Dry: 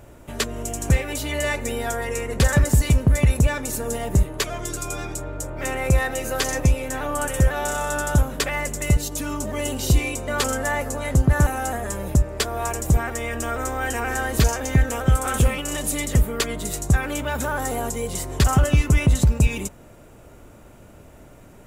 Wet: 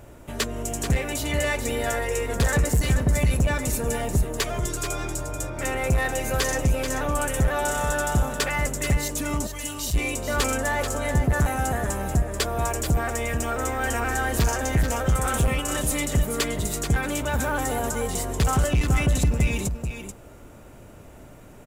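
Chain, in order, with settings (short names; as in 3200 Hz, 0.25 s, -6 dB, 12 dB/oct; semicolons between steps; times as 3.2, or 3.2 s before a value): soft clip -15.5 dBFS, distortion -12 dB; 9.47–9.94 passive tone stack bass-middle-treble 10-0-10; echo 0.435 s -8 dB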